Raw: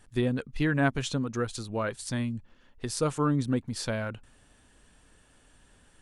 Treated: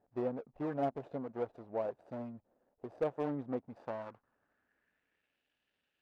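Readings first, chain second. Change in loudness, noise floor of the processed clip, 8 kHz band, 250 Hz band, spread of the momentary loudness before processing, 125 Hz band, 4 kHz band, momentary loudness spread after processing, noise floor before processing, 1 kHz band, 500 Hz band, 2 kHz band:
-9.5 dB, -84 dBFS, under -35 dB, -11.5 dB, 9 LU, -18.0 dB, under -25 dB, 12 LU, -61 dBFS, -7.0 dB, -4.5 dB, -20.5 dB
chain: median filter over 41 samples; band-pass sweep 680 Hz -> 2.9 kHz, 3.62–5.42 s; hard clipper -28.5 dBFS, distortion -25 dB; trim +3.5 dB

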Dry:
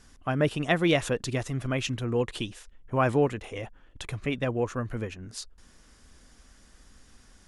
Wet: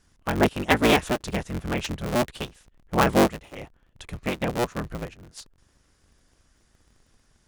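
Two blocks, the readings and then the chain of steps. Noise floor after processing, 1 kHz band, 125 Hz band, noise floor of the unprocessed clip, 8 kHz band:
-65 dBFS, +6.5 dB, -1.0 dB, -57 dBFS, +4.0 dB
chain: cycle switcher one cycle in 3, inverted; upward expansion 1.5:1, over -45 dBFS; trim +5 dB

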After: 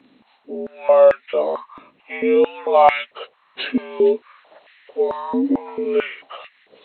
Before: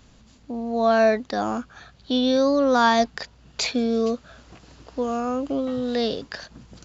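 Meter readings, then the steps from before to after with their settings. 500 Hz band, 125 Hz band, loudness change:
+6.0 dB, no reading, +4.0 dB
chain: frequency axis rescaled in octaves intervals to 83%; step-sequenced high-pass 4.5 Hz 280–1900 Hz

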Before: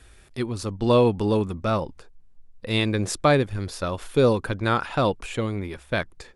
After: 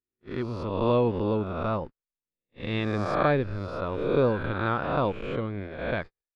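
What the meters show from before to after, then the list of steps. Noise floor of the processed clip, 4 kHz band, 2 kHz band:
under -85 dBFS, -10.0 dB, -3.5 dB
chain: reverse spectral sustain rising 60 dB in 1.14 s; gate -28 dBFS, range -52 dB; distance through air 330 m; trim -5 dB

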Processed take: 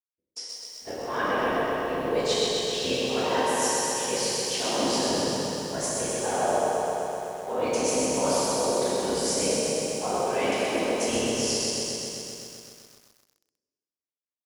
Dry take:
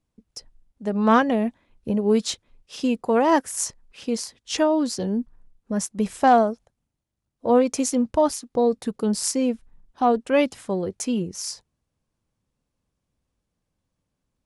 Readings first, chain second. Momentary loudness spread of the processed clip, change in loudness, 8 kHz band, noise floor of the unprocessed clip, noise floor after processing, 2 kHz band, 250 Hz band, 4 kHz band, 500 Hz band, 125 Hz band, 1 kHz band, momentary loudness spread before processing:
10 LU, -3.0 dB, +3.5 dB, -81 dBFS, under -85 dBFS, +1.0 dB, -8.5 dB, +6.0 dB, -2.0 dB, -3.0 dB, -4.0 dB, 16 LU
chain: high-pass 300 Hz 24 dB/octave; expander -43 dBFS; low-pass 3.3 kHz 6 dB/octave; tilt shelf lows -6 dB; band-stop 1.3 kHz, Q 9.5; reverse; compression 6:1, threshold -32 dBFS, peak gain reduction 17.5 dB; reverse; whisper effect; on a send: feedback delay 344 ms, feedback 33%, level -17.5 dB; on the sum: plate-style reverb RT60 2.2 s, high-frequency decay 0.85×, DRR -7 dB; bit-crushed delay 128 ms, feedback 80%, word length 9-bit, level -4 dB

